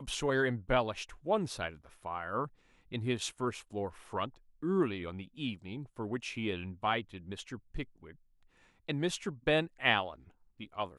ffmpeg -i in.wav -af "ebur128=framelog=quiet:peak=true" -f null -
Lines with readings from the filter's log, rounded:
Integrated loudness:
  I:         -35.1 LUFS
  Threshold: -45.6 LUFS
Loudness range:
  LRA:         4.0 LU
  Threshold: -56.7 LUFS
  LRA low:   -38.8 LUFS
  LRA high:  -34.8 LUFS
True peak:
  Peak:      -12.2 dBFS